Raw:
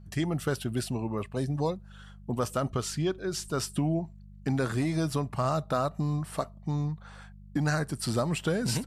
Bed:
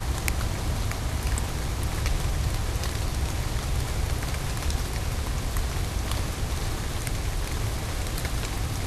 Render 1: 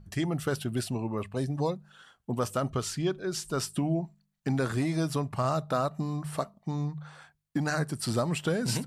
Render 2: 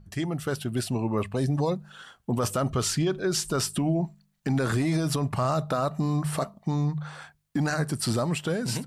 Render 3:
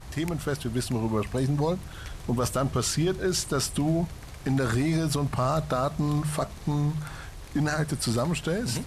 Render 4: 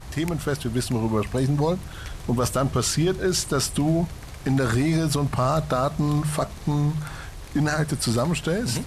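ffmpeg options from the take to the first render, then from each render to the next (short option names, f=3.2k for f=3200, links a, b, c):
-af "bandreject=f=50:t=h:w=4,bandreject=f=100:t=h:w=4,bandreject=f=150:t=h:w=4,bandreject=f=200:t=h:w=4"
-af "dynaudnorm=f=160:g=13:m=8dB,alimiter=limit=-17.5dB:level=0:latency=1:release=17"
-filter_complex "[1:a]volume=-13.5dB[a];[0:a][a]amix=inputs=2:normalize=0"
-af "volume=3.5dB"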